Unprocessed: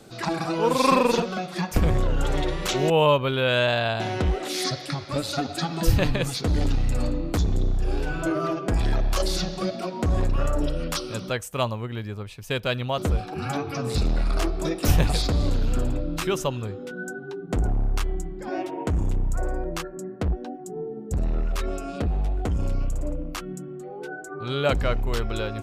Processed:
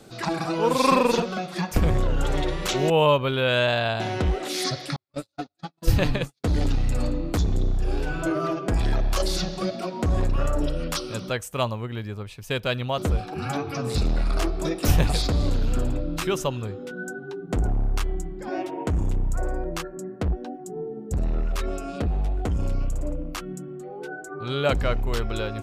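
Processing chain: 4.96–6.44 gate -23 dBFS, range -53 dB

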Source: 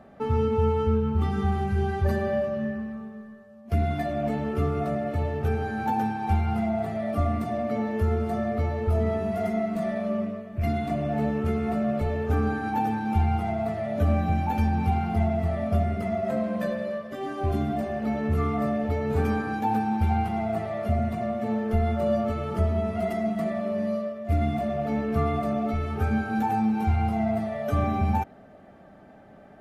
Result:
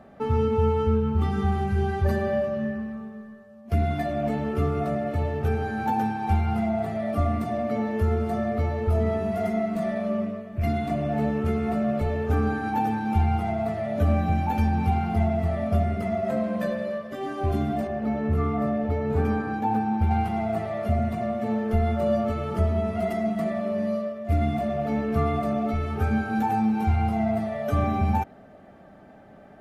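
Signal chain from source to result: 17.87–20.11 high shelf 2600 Hz -9 dB; gain +1 dB

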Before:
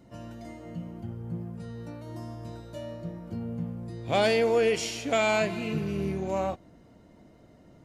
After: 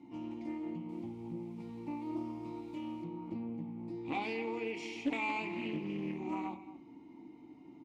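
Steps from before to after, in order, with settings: reverb RT60 0.20 s, pre-delay 6 ms, DRR 7 dB; 0.89–3.04 requantised 10-bit, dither triangular; high shelf 3100 Hz +7 dB; de-hum 94.47 Hz, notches 32; compressor 2:1, threshold -37 dBFS, peak gain reduction 11 dB; vowel filter u; outdoor echo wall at 39 m, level -15 dB; Doppler distortion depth 0.26 ms; gain +11 dB

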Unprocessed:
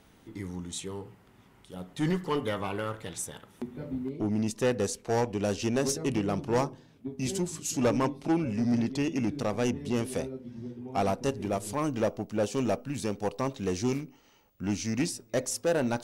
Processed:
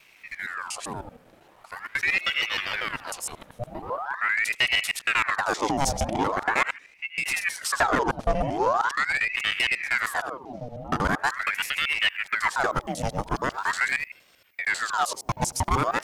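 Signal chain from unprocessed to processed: local time reversal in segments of 78 ms; ring modulator with a swept carrier 1400 Hz, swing 75%, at 0.42 Hz; gain +6.5 dB

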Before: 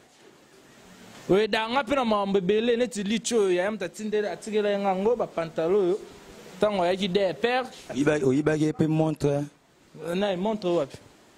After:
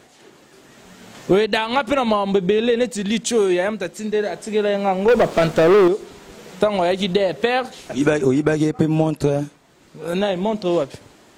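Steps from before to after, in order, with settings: 5.08–5.88 sample leveller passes 3; gain +5.5 dB

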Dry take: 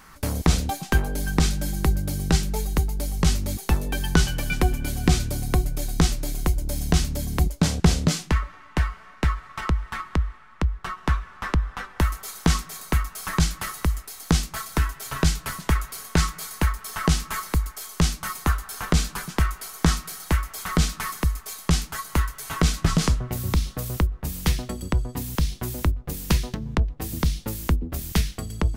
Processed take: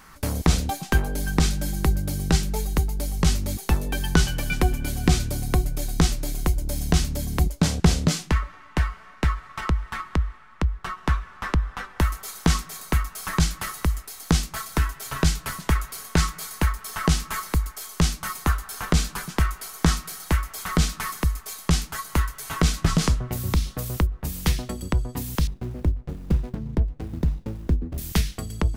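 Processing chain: 25.47–27.98 median filter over 41 samples

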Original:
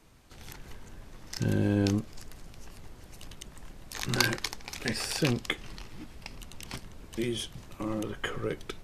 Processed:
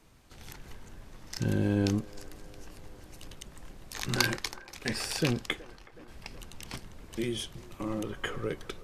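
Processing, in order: 4.27–6.08 expander -34 dBFS; band-limited delay 0.372 s, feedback 68%, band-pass 790 Hz, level -17 dB; gain -1 dB

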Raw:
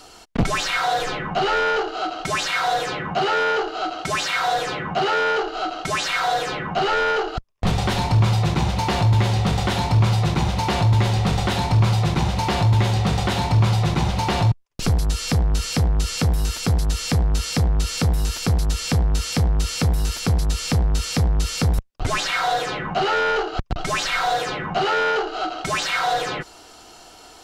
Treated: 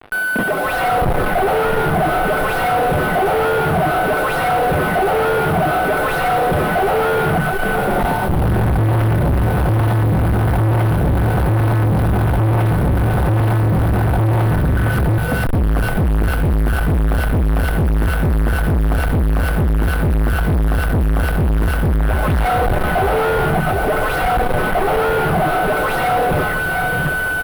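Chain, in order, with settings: tilt shelf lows +7.5 dB, about 1400 Hz; whine 1500 Hz -27 dBFS; compressor 4:1, threshold -20 dBFS, peak gain reduction 12.5 dB; on a send: feedback echo 0.709 s, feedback 41%, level -11.5 dB; on the sum: added noise pink -44 dBFS; comb 1.5 ms, depth 35%; three bands offset in time mids, highs, lows 0.12/0.66 s, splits 220/860 Hz; fuzz box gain 38 dB, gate -38 dBFS; EQ curve 850 Hz 0 dB, 3300 Hz -10 dB, 6900 Hz -24 dB, 10000 Hz -5 dB

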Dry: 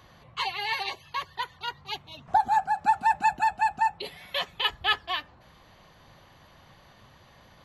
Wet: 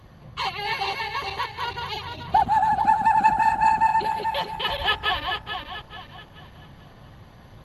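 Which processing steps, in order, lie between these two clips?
regenerating reverse delay 0.217 s, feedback 62%, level -2 dB; low shelf 460 Hz +10.5 dB; Opus 32 kbps 48000 Hz

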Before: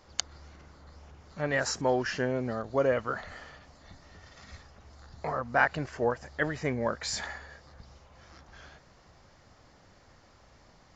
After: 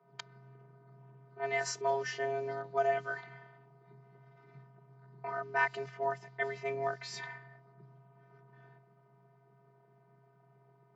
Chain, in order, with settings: robotiser 277 Hz; frequency shift +130 Hz; low-pass opened by the level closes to 960 Hz, open at -26 dBFS; gain -3 dB

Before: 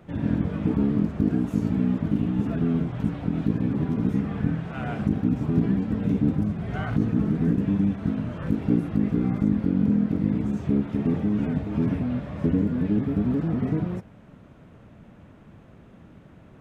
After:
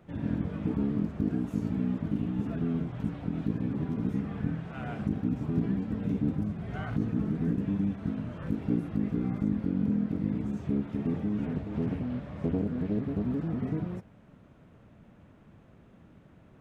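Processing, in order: 11.45–13.24 Doppler distortion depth 0.47 ms; gain -6.5 dB

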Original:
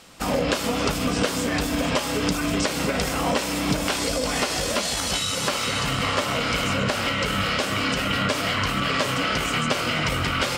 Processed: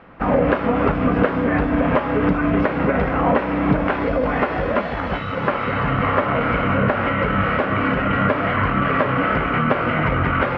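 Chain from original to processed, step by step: LPF 1900 Hz 24 dB/oct; gain +6.5 dB

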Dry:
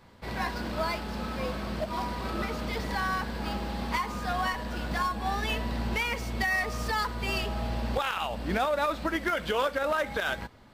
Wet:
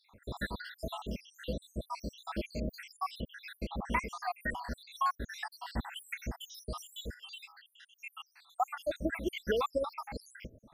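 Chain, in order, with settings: random spectral dropouts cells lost 82%; 7.14–8.6 ladder high-pass 1400 Hz, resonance 35%

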